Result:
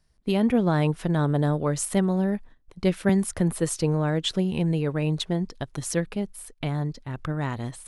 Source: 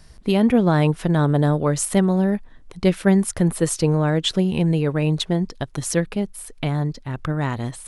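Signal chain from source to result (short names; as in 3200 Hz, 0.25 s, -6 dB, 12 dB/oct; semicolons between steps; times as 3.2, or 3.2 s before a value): gate -38 dBFS, range -15 dB; 3.09–3.59 three-band squash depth 40%; gain -5 dB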